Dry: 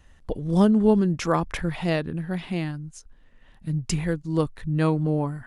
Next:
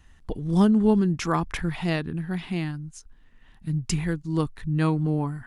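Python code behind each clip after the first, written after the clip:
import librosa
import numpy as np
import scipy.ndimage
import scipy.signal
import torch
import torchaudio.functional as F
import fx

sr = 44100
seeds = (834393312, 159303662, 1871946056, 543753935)

y = fx.peak_eq(x, sr, hz=550.0, db=-9.5, octaves=0.47)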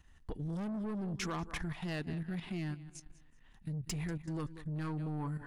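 y = fx.echo_feedback(x, sr, ms=190, feedback_pct=38, wet_db=-17)
y = 10.0 ** (-23.5 / 20.0) * np.tanh(y / 10.0 ** (-23.5 / 20.0))
y = fx.level_steps(y, sr, step_db=11)
y = F.gain(torch.from_numpy(y), -4.0).numpy()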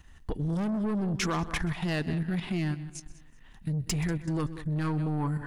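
y = x + 10.0 ** (-20.0 / 20.0) * np.pad(x, (int(128 * sr / 1000.0), 0))[:len(x)]
y = F.gain(torch.from_numpy(y), 8.5).numpy()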